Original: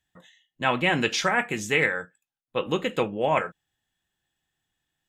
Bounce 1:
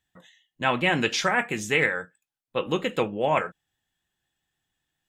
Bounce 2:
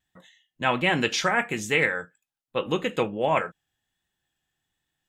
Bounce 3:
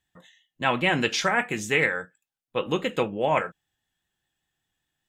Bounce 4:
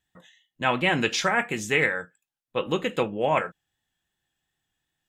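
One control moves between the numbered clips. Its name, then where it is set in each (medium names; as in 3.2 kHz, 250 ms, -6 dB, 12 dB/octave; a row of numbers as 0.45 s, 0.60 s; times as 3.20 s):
vibrato, rate: 7.5 Hz, 1.3 Hz, 5 Hz, 2.7 Hz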